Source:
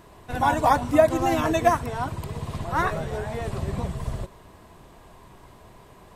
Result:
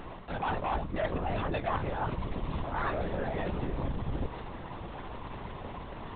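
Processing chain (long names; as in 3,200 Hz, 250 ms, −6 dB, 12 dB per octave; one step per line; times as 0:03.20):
soft clipping −17 dBFS, distortion −11 dB
linear-prediction vocoder at 8 kHz whisper
reversed playback
downward compressor 6 to 1, threshold −38 dBFS, peak gain reduction 19.5 dB
reversed playback
level +8 dB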